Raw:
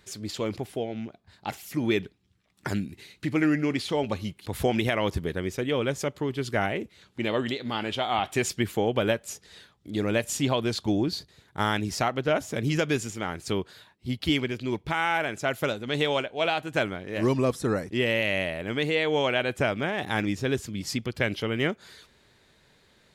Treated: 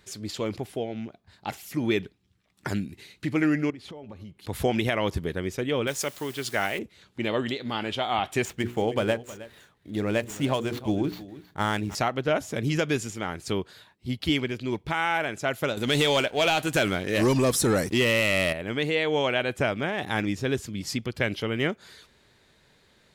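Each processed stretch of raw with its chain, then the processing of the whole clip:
3.7–4.4 high shelf 2100 Hz -11.5 dB + compressor 10:1, threshold -38 dBFS
5.87–6.79 tilt +2.5 dB/oct + requantised 8-bit, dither triangular
8.45–11.95 median filter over 9 samples + notches 60/120/180/240/300/360/420/480 Hz + echo 0.316 s -17 dB
15.77–18.53 high shelf 3900 Hz +11.5 dB + compressor 2:1, threshold -25 dBFS + sample leveller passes 2
whole clip: dry

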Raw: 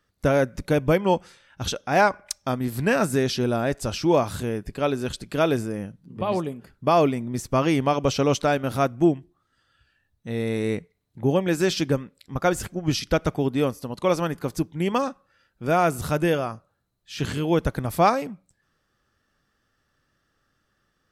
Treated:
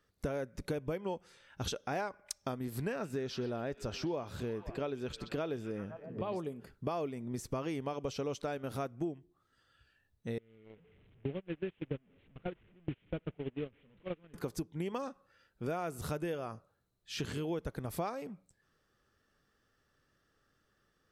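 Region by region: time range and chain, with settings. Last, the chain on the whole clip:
2.92–6.36 bell 10000 Hz -12 dB 0.86 oct + delay with a stepping band-pass 0.128 s, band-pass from 3500 Hz, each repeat -0.7 oct, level -12 dB
10.38–14.34 delta modulation 16 kbps, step -23 dBFS + bell 960 Hz -12.5 dB 2.3 oct + gate -25 dBFS, range -28 dB
whole clip: bell 430 Hz +5 dB 0.51 oct; compressor 6:1, threshold -30 dBFS; gain -4.5 dB

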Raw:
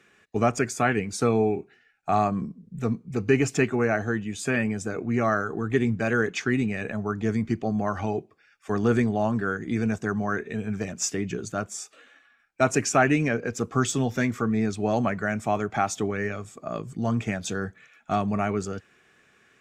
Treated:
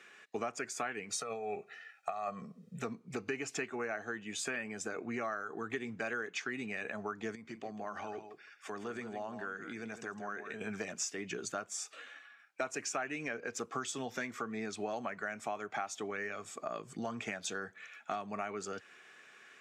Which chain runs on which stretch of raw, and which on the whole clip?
1.1–2.78 low shelf 95 Hz -10 dB + negative-ratio compressor -26 dBFS, ratio -0.5 + comb 1.6 ms, depth 80%
7.35–10.61 compressor 2:1, threshold -45 dBFS + echo 0.16 s -10.5 dB
whole clip: weighting filter A; compressor 5:1, threshold -39 dBFS; gain +2.5 dB

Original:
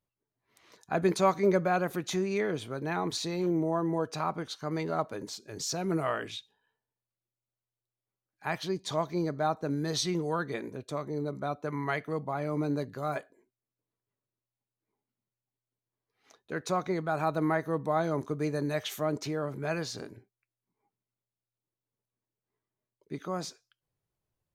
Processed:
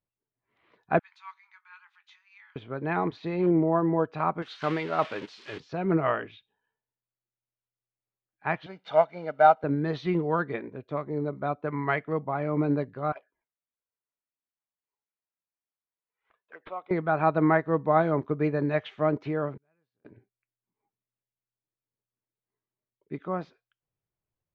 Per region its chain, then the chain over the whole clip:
0.99–2.56 brick-wall FIR high-pass 790 Hz + differentiator + doubler 21 ms -11.5 dB
4.42–5.6 switching spikes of -28 dBFS + tilt +2.5 dB/oct + sustainer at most 21 dB/s
8.66–9.64 CVSD 64 kbps + HPF 340 Hz + comb 1.4 ms, depth 78%
13.12–16.91 HPF 820 Hz + envelope flanger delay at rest 2.1 ms, full sweep at -36.5 dBFS + decimation joined by straight lines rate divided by 6×
19.57–20.05 notch 680 Hz, Q 19 + flipped gate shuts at -40 dBFS, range -37 dB
whole clip: LPF 2900 Hz 24 dB/oct; upward expander 1.5:1, over -48 dBFS; gain +8.5 dB

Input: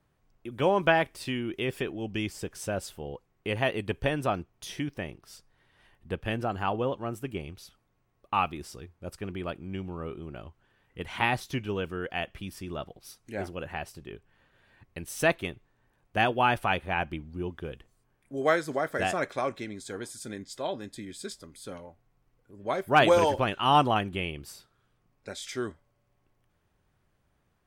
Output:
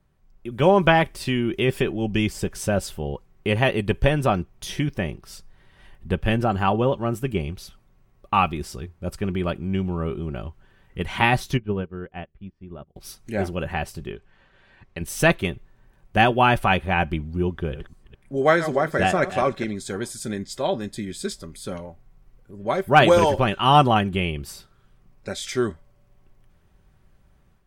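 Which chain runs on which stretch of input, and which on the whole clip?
11.57–12.96 tape spacing loss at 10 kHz 39 dB + de-hum 76.25 Hz, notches 6 + upward expander 2.5:1, over -48 dBFS
14.11–15.01 LPF 6200 Hz + low shelf 250 Hz -8 dB
17.51–19.75 reverse delay 0.213 s, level -12 dB + high shelf 6200 Hz -5.5 dB
whole clip: low shelf 130 Hz +11 dB; comb 5.2 ms, depth 31%; AGC gain up to 7 dB

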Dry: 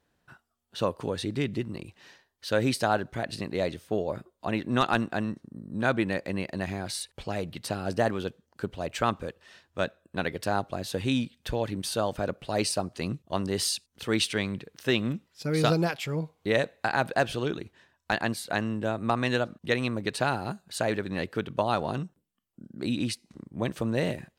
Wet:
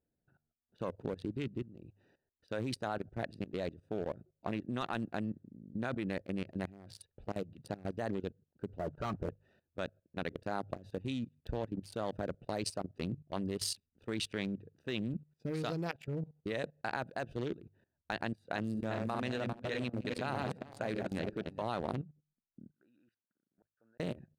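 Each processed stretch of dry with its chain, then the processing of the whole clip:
8.79–9.29 steep low-pass 1500 Hz 96 dB/oct + sample leveller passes 3 + notch comb 260 Hz
18.35–21.63 regenerating reverse delay 0.199 s, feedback 61%, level -5.5 dB + notches 60/120/180/240/300/360 Hz
22.7–24 band-pass 1500 Hz, Q 6.7 + flipped gate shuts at -38 dBFS, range -33 dB
whole clip: Wiener smoothing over 41 samples; notches 50/100/150 Hz; level quantiser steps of 17 dB; gain -2 dB

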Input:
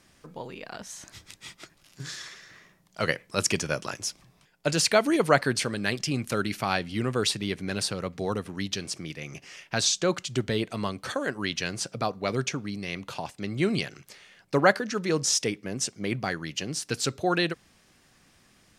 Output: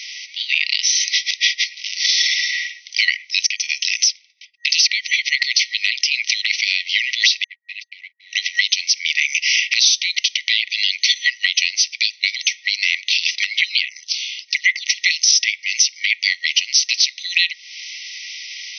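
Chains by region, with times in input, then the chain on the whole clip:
3.47–5.42 compressor 4:1, threshold -30 dBFS + transient shaper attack -1 dB, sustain -7 dB + expander -56 dBFS
7.44–8.33 G.711 law mismatch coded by mu + ladder band-pass 670 Hz, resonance 70% + gate -48 dBFS, range -56 dB
13.61–14.87 HPF 140 Hz + low shelf 440 Hz +6.5 dB + envelope phaser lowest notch 270 Hz, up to 4400 Hz, full sweep at -14 dBFS
whole clip: FFT band-pass 1900–6200 Hz; compressor 6:1, threshold -46 dBFS; maximiser +35.5 dB; gain -2 dB

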